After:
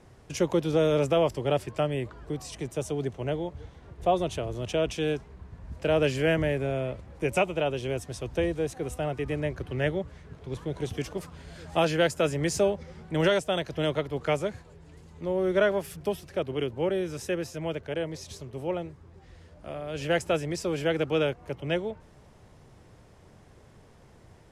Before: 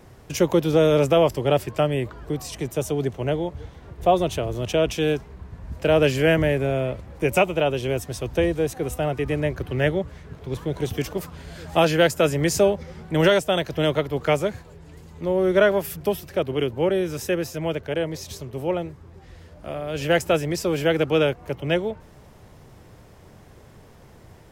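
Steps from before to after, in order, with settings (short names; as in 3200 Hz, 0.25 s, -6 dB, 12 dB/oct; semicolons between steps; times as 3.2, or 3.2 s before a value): LPF 11000 Hz 24 dB/oct; gain -6 dB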